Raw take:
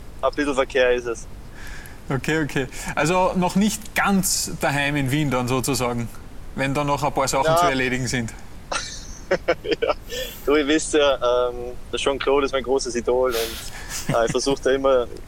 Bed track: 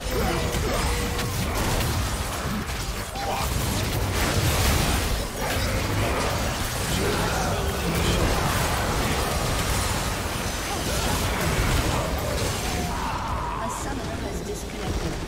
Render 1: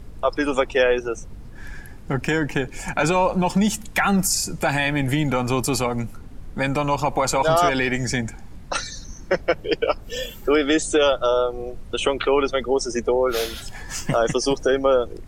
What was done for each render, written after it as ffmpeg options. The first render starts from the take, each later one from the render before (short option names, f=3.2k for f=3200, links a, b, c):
-af "afftdn=nr=8:nf=-38"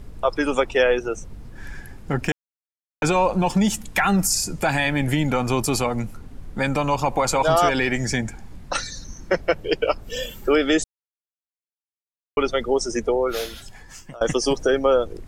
-filter_complex "[0:a]asplit=6[a][b][c][d][e][f];[a]atrim=end=2.32,asetpts=PTS-STARTPTS,afade=t=out:st=2.316:d=0.004:c=hsin[g];[b]atrim=start=2.32:end=3.02,asetpts=PTS-STARTPTS,volume=0[h];[c]atrim=start=3.02:end=10.84,asetpts=PTS-STARTPTS,afade=t=in:d=0.004:c=hsin,afade=t=out:st=7.816:d=0.004:c=hsin[i];[d]atrim=start=10.84:end=12.37,asetpts=PTS-STARTPTS,volume=0[j];[e]atrim=start=12.37:end=14.21,asetpts=PTS-STARTPTS,afade=t=in:d=0.004:c=hsin,afade=t=out:st=0.6:d=1.24:silence=0.0668344[k];[f]atrim=start=14.21,asetpts=PTS-STARTPTS,afade=t=in:d=0.004:c=hsin:silence=0.0668344[l];[g][h][i][j][k][l]concat=n=6:v=0:a=1"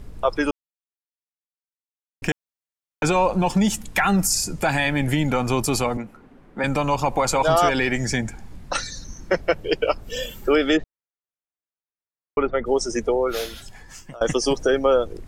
-filter_complex "[0:a]asettb=1/sr,asplit=3[a][b][c];[a]atrim=end=5.974[d];[b]atrim=start=5.97:end=6.64,asetpts=PTS-STARTPTS,afade=t=in:d=0.004:c=qsin,afade=t=out:st=0.666:d=0.004:c=qsin,acrossover=split=190 2800:gain=0.112 1 0.178[e][f][g];[e][f][g]amix=inputs=3:normalize=0[h];[c]atrim=start=6.636[i];[d][h]acrossfade=d=0.004:c1=hsin:c2=qsin[j];[j][i]acrossfade=d=0.004:c1=qsin:c2=hsin,asplit=3[k][l][m];[k]afade=t=out:st=10.76:d=0.02[n];[l]lowpass=f=2.1k:w=0.5412,lowpass=f=2.1k:w=1.3066,afade=t=in:st=10.76:d=0.02,afade=t=out:st=12.65:d=0.02[o];[m]afade=t=in:st=12.65:d=0.02[p];[n][o][p]amix=inputs=3:normalize=0,asplit=3[q][r][s];[q]atrim=end=0.51,asetpts=PTS-STARTPTS,afade=t=out:st=0.506:d=0.004:c=hsin[t];[r]atrim=start=0.51:end=2.22,asetpts=PTS-STARTPTS,volume=0[u];[s]atrim=start=2.22,asetpts=PTS-STARTPTS,afade=t=in:d=0.004:c=hsin[v];[t][u][v]concat=n=3:v=0:a=1"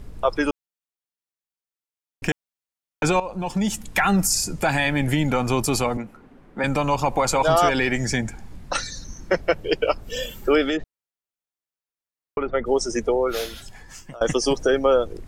-filter_complex "[0:a]asettb=1/sr,asplit=3[a][b][c];[a]atrim=end=10.644[d];[b]atrim=start=10.64:end=12.5,asetpts=PTS-STARTPTS,afade=t=in:d=0.004:c=qsin,afade=t=out:st=1.856:d=0.004:c=qsin,acompressor=threshold=-19dB:ratio=6:attack=3.2:release=140:knee=1:detection=peak[e];[c]atrim=start=12.496[f];[d][e]acrossfade=d=0.004:c1=hsin:c2=qsin[g];[g][f]acrossfade=d=0.004:c1=qsin:c2=hsin,asplit=2[h][i];[h]atrim=end=3.2,asetpts=PTS-STARTPTS,afade=t=out:st=3.196:d=0.004:c=hsin:silence=0.188365[j];[i]atrim=start=3.2,asetpts=PTS-STARTPTS,afade=t=in:d=0.75:silence=0.188365[k];[j][k]concat=n=2:v=0:a=1"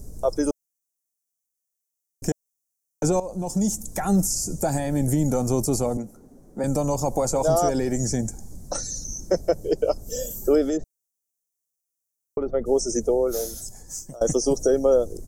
-filter_complex "[0:a]acrossover=split=3300[a][b];[b]acompressor=threshold=-38dB:ratio=4:attack=1:release=60[c];[a][c]amix=inputs=2:normalize=0,firequalizer=gain_entry='entry(620,0);entry(990,-11);entry(2700,-23);entry(6000,12)':delay=0.05:min_phase=1"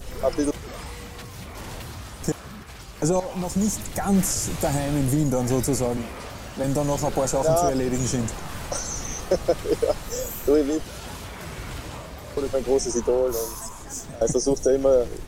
-filter_complex "[1:a]volume=-12dB[a];[0:a][a]amix=inputs=2:normalize=0"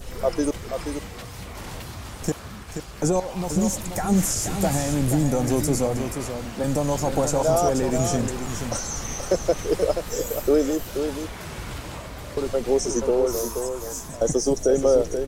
-af "aecho=1:1:480:0.422"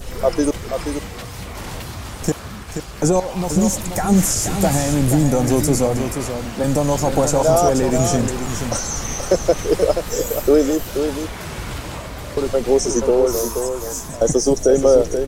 -af "volume=5.5dB"